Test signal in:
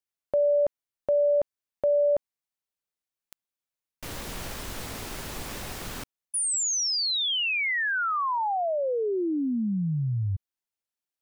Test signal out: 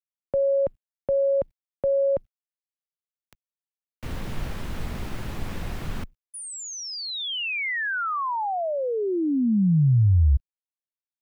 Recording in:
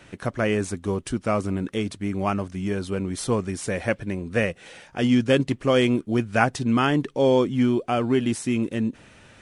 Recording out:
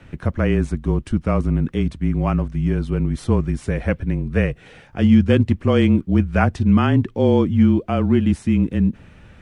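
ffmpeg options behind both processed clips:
ffmpeg -i in.wav -af "afreqshift=-29,acrusher=bits=11:mix=0:aa=0.000001,bass=frequency=250:gain=10,treble=frequency=4000:gain=-10" out.wav

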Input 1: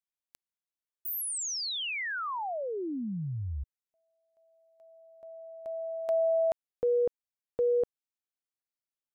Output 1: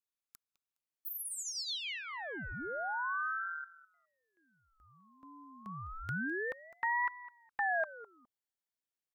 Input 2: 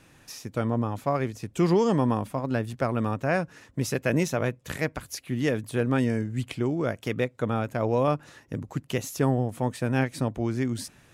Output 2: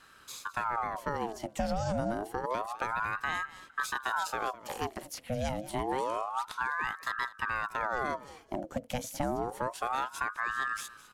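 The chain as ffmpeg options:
ffmpeg -i in.wav -filter_complex "[0:a]aecho=1:1:0.8:0.36,acrossover=split=110|640|3600[link_01][link_02][link_03][link_04];[link_01]acompressor=threshold=-45dB:ratio=4[link_05];[link_02]acompressor=threshold=-28dB:ratio=4[link_06];[link_03]acompressor=threshold=-41dB:ratio=4[link_07];[link_04]acompressor=threshold=-37dB:ratio=4[link_08];[link_05][link_06][link_07][link_08]amix=inputs=4:normalize=0,aecho=1:1:207|414:0.133|0.024,aeval=exprs='val(0)*sin(2*PI*920*n/s+920*0.6/0.28*sin(2*PI*0.28*n/s))':channel_layout=same" out.wav

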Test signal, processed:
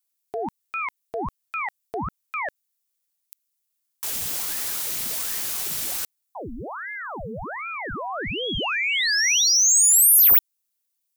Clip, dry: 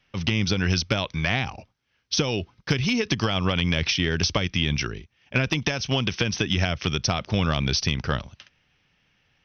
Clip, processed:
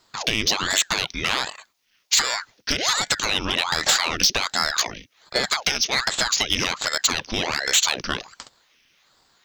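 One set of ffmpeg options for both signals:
ffmpeg -i in.wav -af "crystalizer=i=9:c=0,acontrast=53,aeval=exprs='val(0)*sin(2*PI*1000*n/s+1000*0.9/1.3*sin(2*PI*1.3*n/s))':channel_layout=same,volume=-8dB" out.wav

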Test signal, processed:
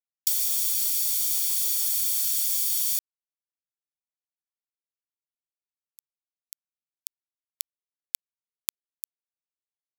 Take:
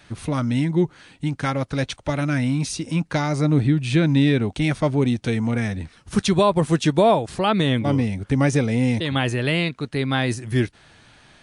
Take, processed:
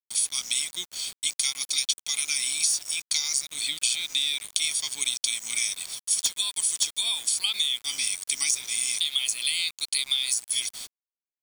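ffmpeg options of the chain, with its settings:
ffmpeg -i in.wav -filter_complex "[0:a]agate=range=-21dB:threshold=-45dB:ratio=16:detection=peak,highpass=frequency=390:poles=1,aderivative,aecho=1:1:0.9:0.78,aexciter=amount=15.7:drive=4.3:freq=2400,asplit=2[link_01][link_02];[link_02]aeval=exprs='3.98*sin(PI/2*2.82*val(0)/3.98)':channel_layout=same,volume=-9dB[link_03];[link_01][link_03]amix=inputs=2:normalize=0,acompressor=threshold=-12dB:ratio=16,aeval=exprs='val(0)*gte(abs(val(0)),0.0447)':channel_layout=same,volume=-10dB" out.wav

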